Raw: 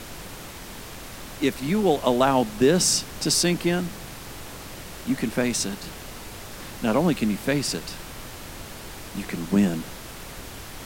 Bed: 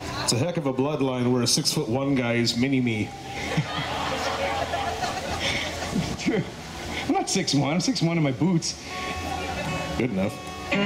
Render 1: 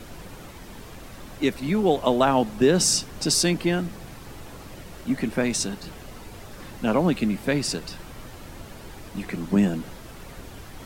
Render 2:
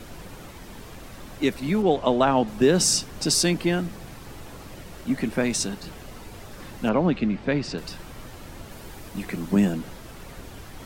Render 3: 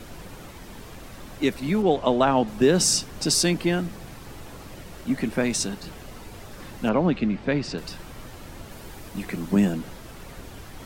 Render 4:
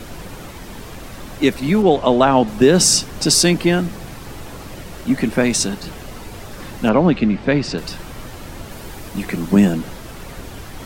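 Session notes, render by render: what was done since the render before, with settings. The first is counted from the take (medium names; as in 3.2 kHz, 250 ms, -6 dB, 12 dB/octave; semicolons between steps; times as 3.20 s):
noise reduction 8 dB, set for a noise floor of -40 dBFS
1.82–2.48 s: distance through air 71 m; 6.89–7.78 s: distance through air 160 m; 8.71–9.73 s: treble shelf 9.9 kHz +6 dB
no audible change
trim +7.5 dB; peak limiter -2 dBFS, peak gain reduction 2 dB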